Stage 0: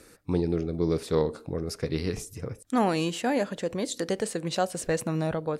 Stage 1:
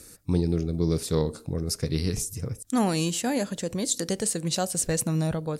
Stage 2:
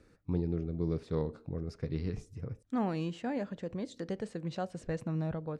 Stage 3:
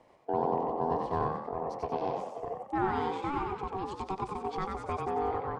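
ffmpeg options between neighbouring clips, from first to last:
ffmpeg -i in.wav -af "bass=frequency=250:gain=9,treble=frequency=4000:gain=14,volume=-3dB" out.wav
ffmpeg -i in.wav -af "lowpass=2100,volume=-8dB" out.wav
ffmpeg -i in.wav -filter_complex "[0:a]aeval=exprs='val(0)*sin(2*PI*570*n/s)':channel_layout=same,bass=frequency=250:gain=-2,treble=frequency=4000:gain=-6,asplit=7[link_01][link_02][link_03][link_04][link_05][link_06][link_07];[link_02]adelay=92,afreqshift=50,volume=-3.5dB[link_08];[link_03]adelay=184,afreqshift=100,volume=-10.2dB[link_09];[link_04]adelay=276,afreqshift=150,volume=-17dB[link_10];[link_05]adelay=368,afreqshift=200,volume=-23.7dB[link_11];[link_06]adelay=460,afreqshift=250,volume=-30.5dB[link_12];[link_07]adelay=552,afreqshift=300,volume=-37.2dB[link_13];[link_01][link_08][link_09][link_10][link_11][link_12][link_13]amix=inputs=7:normalize=0,volume=4dB" out.wav

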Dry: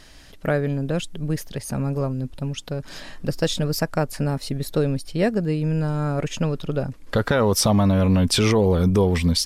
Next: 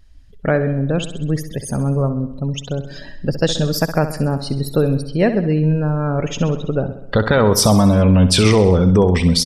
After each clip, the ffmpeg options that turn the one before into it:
ffmpeg -i in.wav -filter_complex "[0:a]afftdn=noise_reduction=23:noise_floor=-38,asplit=2[link_01][link_02];[link_02]aecho=0:1:65|130|195|260|325|390:0.266|0.152|0.0864|0.0493|0.0281|0.016[link_03];[link_01][link_03]amix=inputs=2:normalize=0,volume=5dB" out.wav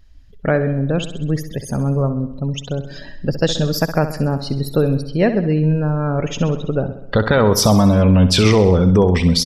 ffmpeg -i in.wav -af "equalizer=frequency=8900:width=4.4:gain=-12" out.wav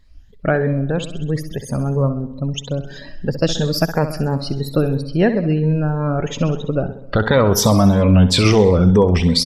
ffmpeg -i in.wav -af "afftfilt=real='re*pow(10,8/40*sin(2*PI*(1*log(max(b,1)*sr/1024/100)/log(2)-(3)*(pts-256)/sr)))':imag='im*pow(10,8/40*sin(2*PI*(1*log(max(b,1)*sr/1024/100)/log(2)-(3)*(pts-256)/sr)))':win_size=1024:overlap=0.75,volume=-1dB" out.wav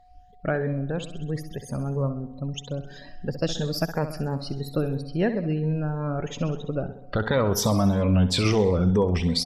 ffmpeg -i in.wav -af "aeval=exprs='val(0)+0.00501*sin(2*PI*730*n/s)':channel_layout=same,volume=-8.5dB" out.wav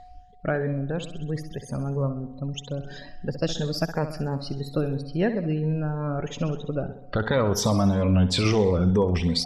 ffmpeg -i in.wav -af "lowpass=9300,areverse,acompressor=mode=upward:threshold=-32dB:ratio=2.5,areverse" out.wav

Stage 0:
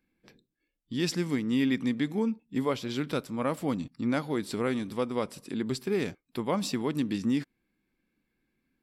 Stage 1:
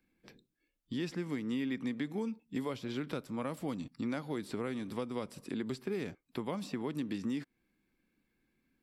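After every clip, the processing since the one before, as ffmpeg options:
ffmpeg -i in.wav -filter_complex "[0:a]acrossover=split=280|2600[link_01][link_02][link_03];[link_01]acompressor=threshold=-41dB:ratio=4[link_04];[link_02]acompressor=threshold=-38dB:ratio=4[link_05];[link_03]acompressor=threshold=-54dB:ratio=4[link_06];[link_04][link_05][link_06]amix=inputs=3:normalize=0" out.wav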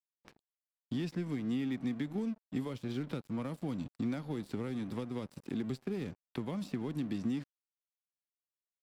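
ffmpeg -i in.wav -filter_complex "[0:a]highshelf=frequency=3100:gain=-10,acrossover=split=230|3000[link_01][link_02][link_03];[link_02]acompressor=threshold=-53dB:ratio=2[link_04];[link_01][link_04][link_03]amix=inputs=3:normalize=0,aeval=exprs='sgn(val(0))*max(abs(val(0))-0.00133,0)':channel_layout=same,volume=6dB" out.wav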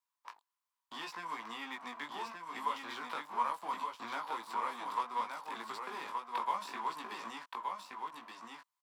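ffmpeg -i in.wav -af "flanger=delay=17.5:depth=3.7:speed=0.7,highpass=frequency=1000:width_type=q:width=8.2,aecho=1:1:1173:0.596,volume=6dB" out.wav

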